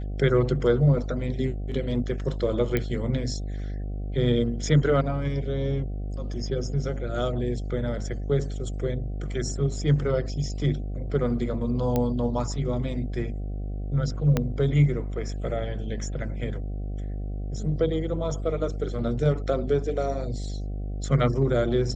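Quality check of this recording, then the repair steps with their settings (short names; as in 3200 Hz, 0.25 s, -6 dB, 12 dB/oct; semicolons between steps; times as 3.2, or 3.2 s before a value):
buzz 50 Hz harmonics 15 -31 dBFS
2.77 pop -12 dBFS
11.96 pop -12 dBFS
14.37 pop -10 dBFS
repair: de-click; de-hum 50 Hz, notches 15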